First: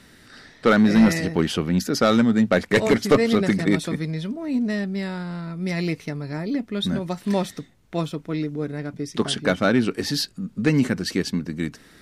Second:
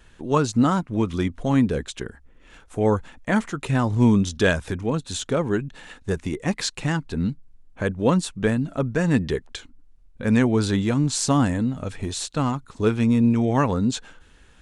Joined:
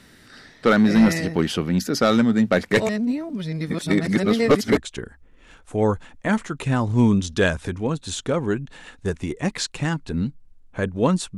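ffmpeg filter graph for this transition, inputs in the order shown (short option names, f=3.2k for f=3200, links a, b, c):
-filter_complex "[0:a]apad=whole_dur=11.37,atrim=end=11.37,asplit=2[a][b];[a]atrim=end=2.892[c];[b]atrim=start=2.888:end=4.772,asetpts=PTS-STARTPTS,areverse[d];[1:a]atrim=start=1.798:end=8.4[e];[c][d]acrossfade=d=0.004:c1=hsin:c2=hsin[f];[f][e]acrossfade=d=0.004:c1=hsin:c2=hsin"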